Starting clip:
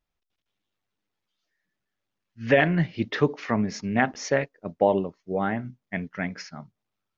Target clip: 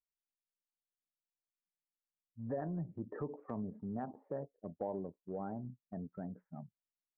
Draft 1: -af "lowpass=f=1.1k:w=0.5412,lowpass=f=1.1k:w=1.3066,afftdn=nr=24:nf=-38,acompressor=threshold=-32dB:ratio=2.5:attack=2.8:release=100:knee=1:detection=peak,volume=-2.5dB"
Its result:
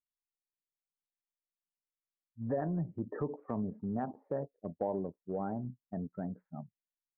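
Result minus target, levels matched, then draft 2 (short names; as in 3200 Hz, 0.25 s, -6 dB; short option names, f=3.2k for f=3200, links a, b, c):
compressor: peak gain reduction -5 dB
-af "lowpass=f=1.1k:w=0.5412,lowpass=f=1.1k:w=1.3066,afftdn=nr=24:nf=-38,acompressor=threshold=-40.5dB:ratio=2.5:attack=2.8:release=100:knee=1:detection=peak,volume=-2.5dB"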